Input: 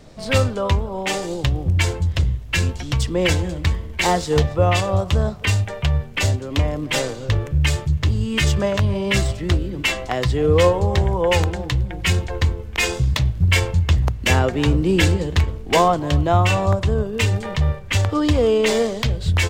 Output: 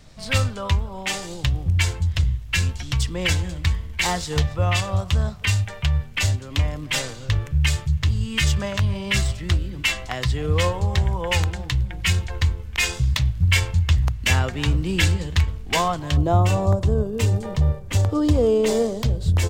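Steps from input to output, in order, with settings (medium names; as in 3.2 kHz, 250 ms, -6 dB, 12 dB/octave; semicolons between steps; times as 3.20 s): peaking EQ 420 Hz -11 dB 2.2 oct, from 16.17 s 2.2 kHz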